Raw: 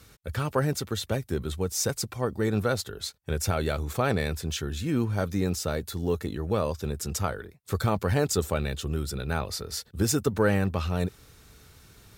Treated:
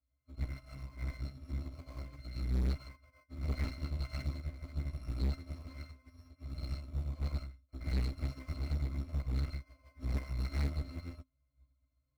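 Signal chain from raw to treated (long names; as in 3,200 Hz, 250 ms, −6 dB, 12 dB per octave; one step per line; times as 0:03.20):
samples in bit-reversed order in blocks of 256 samples
resonances in every octave C, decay 0.25 s
hollow resonant body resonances 660/1,300/2,300 Hz, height 14 dB, ringing for 45 ms
0:01.12–0:02.58: parametric band 190 Hz +7.5 dB 0.97 octaves
reverb whose tail is shaped and stops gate 170 ms rising, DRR −6 dB
in parallel at −9 dB: sample-rate reduction 3,600 Hz, jitter 0%
on the sum: notch filter 700 Hz, Q 12
asymmetric clip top −41 dBFS, bottom −28 dBFS
expander for the loud parts 2.5 to 1, over −51 dBFS
level +4 dB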